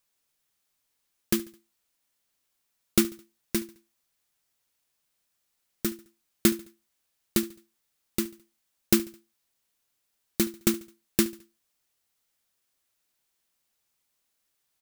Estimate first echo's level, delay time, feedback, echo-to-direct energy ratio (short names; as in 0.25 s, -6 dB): -20.0 dB, 71 ms, 42%, -19.0 dB